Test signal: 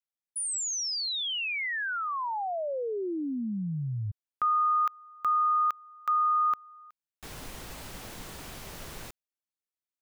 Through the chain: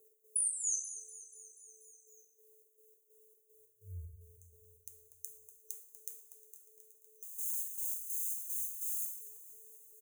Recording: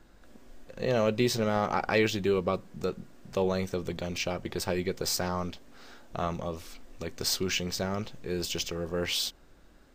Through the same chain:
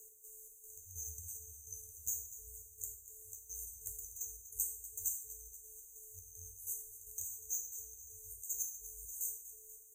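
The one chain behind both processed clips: RIAA curve recording; FFT band-reject 130–6100 Hz; bass shelf 120 Hz -11 dB; compression 6:1, threshold -36 dBFS; whistle 470 Hz -70 dBFS; trance gate "x..xxx..x" 189 bpm -12 dB; on a send: feedback delay 242 ms, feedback 56%, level -14 dB; on the sum: two-slope reverb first 0.57 s, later 2 s, from -24 dB, DRR -0.5 dB; frequency shift -35 Hz; tape noise reduction on one side only encoder only

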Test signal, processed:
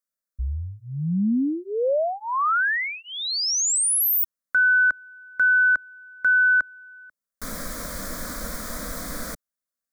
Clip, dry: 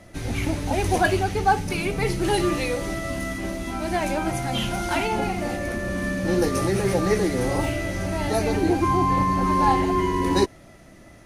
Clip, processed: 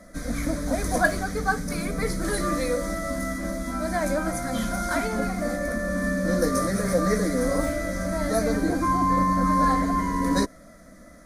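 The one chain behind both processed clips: static phaser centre 560 Hz, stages 8; trim +2.5 dB

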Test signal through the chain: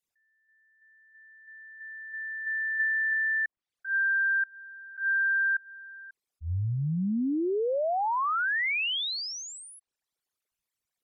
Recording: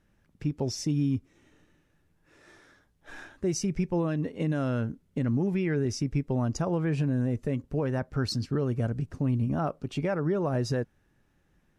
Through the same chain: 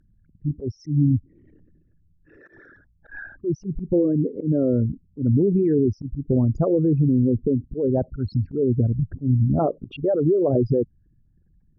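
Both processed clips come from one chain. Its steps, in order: resonances exaggerated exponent 3; low-pass that closes with the level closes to 1.1 kHz, closed at -29 dBFS; slow attack 109 ms; trim +8.5 dB

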